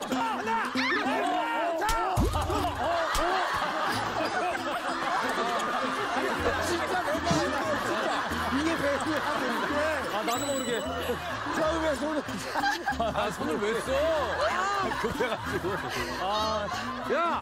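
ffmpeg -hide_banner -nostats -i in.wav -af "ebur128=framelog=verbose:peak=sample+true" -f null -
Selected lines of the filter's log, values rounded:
Integrated loudness:
  I:         -28.4 LUFS
  Threshold: -38.4 LUFS
Loudness range:
  LRA:         1.5 LU
  Threshold: -48.3 LUFS
  LRA low:   -29.1 LUFS
  LRA high:  -27.6 LUFS
Sample peak:
  Peak:      -13.3 dBFS
True peak:
  Peak:      -13.3 dBFS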